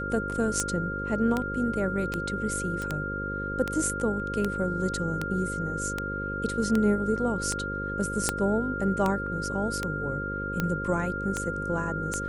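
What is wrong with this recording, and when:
buzz 50 Hz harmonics 11 -35 dBFS
tick 78 rpm -13 dBFS
whine 1.4 kHz -32 dBFS
2.82 s: pop -21 dBFS
8.29 s: pop -9 dBFS

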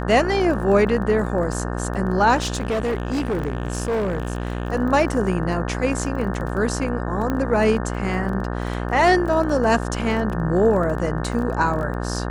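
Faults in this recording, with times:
buzz 60 Hz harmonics 30 -26 dBFS
crackle 17 per s -28 dBFS
2.40–4.70 s: clipped -19 dBFS
7.30 s: pop -12 dBFS

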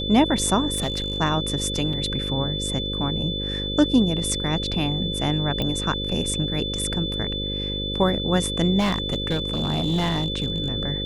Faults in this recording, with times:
buzz 50 Hz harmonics 11 -30 dBFS
whine 3.5 kHz -28 dBFS
0.76–1.18 s: clipped -20 dBFS
1.93 s: dropout 4.1 ms
5.62 s: pop -13 dBFS
8.79–10.68 s: clipped -18 dBFS

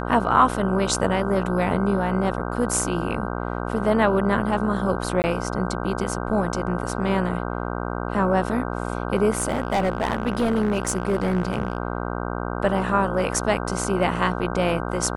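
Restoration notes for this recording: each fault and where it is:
buzz 60 Hz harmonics 26 -28 dBFS
5.22–5.24 s: dropout 19 ms
9.30–11.78 s: clipped -16.5 dBFS

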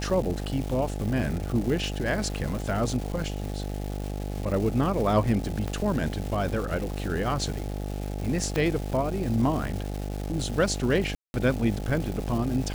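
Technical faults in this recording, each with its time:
buzz 50 Hz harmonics 17 -32 dBFS
crackle 540 per s -33 dBFS
5.68 s: pop -18 dBFS
8.56 s: pop -13 dBFS
11.15–11.34 s: dropout 191 ms

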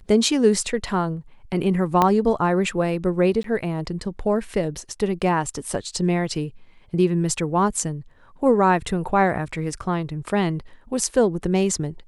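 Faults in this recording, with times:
2.02 s: pop -5 dBFS
3.43–3.44 s: dropout 13 ms

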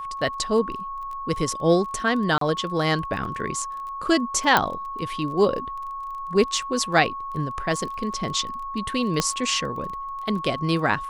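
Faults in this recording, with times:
crackle 20 per s -33 dBFS
whine 1.1 kHz -30 dBFS
2.38–2.41 s: dropout 33 ms
4.57 s: pop -3 dBFS
9.20 s: pop -6 dBFS

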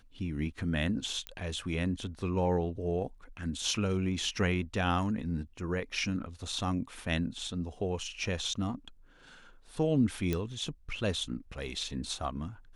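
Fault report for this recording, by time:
1.27 s: pop -20 dBFS
10.33 s: pop -17 dBFS

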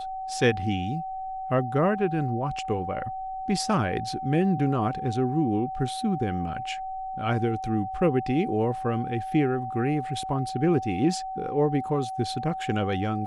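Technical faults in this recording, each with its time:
whine 760 Hz -31 dBFS

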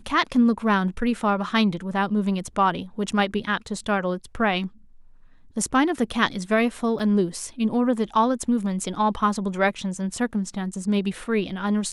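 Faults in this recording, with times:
6.99–7.00 s: dropout 6 ms

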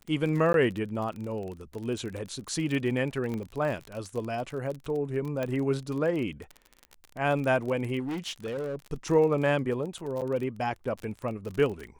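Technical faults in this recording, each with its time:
crackle 32 per s -33 dBFS
0.53–0.54 s: dropout 12 ms
3.34 s: pop -23 dBFS
5.43 s: pop -18 dBFS
7.99–8.76 s: clipped -29.5 dBFS
10.21–10.22 s: dropout 7.6 ms

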